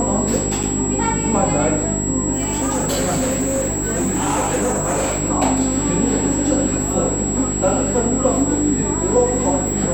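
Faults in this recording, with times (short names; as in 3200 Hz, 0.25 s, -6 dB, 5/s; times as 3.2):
hum 50 Hz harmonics 8 -24 dBFS
tone 7700 Hz -23 dBFS
0.63–0.64 gap 5.6 ms
2.32–5.22 clipped -15.5 dBFS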